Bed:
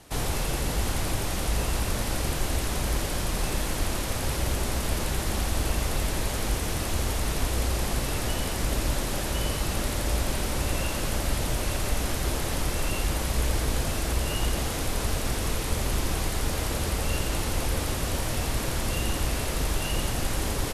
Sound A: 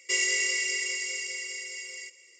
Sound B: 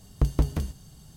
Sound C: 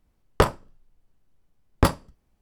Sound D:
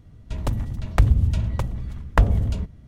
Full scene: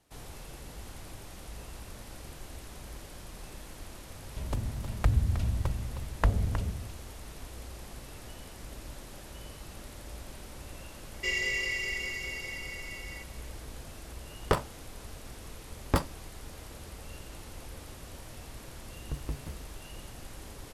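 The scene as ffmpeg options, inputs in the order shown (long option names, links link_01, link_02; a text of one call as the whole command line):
ffmpeg -i bed.wav -i cue0.wav -i cue1.wav -i cue2.wav -i cue3.wav -filter_complex "[0:a]volume=-17.5dB[link_01];[4:a]aecho=1:1:314:0.316[link_02];[1:a]lowpass=3300[link_03];[link_02]atrim=end=2.87,asetpts=PTS-STARTPTS,volume=-8.5dB,afade=type=in:duration=0.004:curve=hsin,afade=type=out:start_time=2.866:duration=0.004:curve=hsin,adelay=4060[link_04];[link_03]atrim=end=2.39,asetpts=PTS-STARTPTS,volume=-1.5dB,afade=type=in:duration=0.004:curve=hsin,afade=type=out:start_time=2.386:duration=0.004:curve=hsin,adelay=491274S[link_05];[3:a]atrim=end=2.41,asetpts=PTS-STARTPTS,volume=-7.5dB,afade=type=in:duration=0.004:curve=hsin,afade=type=out:start_time=2.406:duration=0.004:curve=hsin,adelay=14110[link_06];[2:a]atrim=end=1.16,asetpts=PTS-STARTPTS,volume=-14dB,afade=type=in:duration=0.004:curve=hsin,afade=type=out:start_time=1.156:duration=0.004:curve=hsin,adelay=18900[link_07];[link_01][link_04][link_05][link_06][link_07]amix=inputs=5:normalize=0" out.wav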